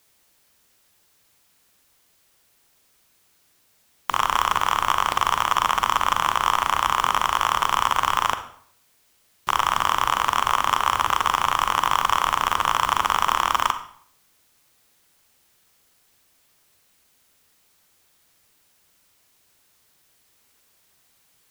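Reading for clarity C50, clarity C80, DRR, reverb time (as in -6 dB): 11.0 dB, 14.5 dB, 9.0 dB, 0.60 s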